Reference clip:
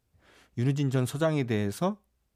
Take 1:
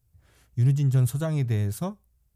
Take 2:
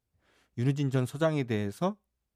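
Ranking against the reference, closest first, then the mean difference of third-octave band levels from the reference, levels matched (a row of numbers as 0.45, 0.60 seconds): 2, 1; 2.0, 6.0 decibels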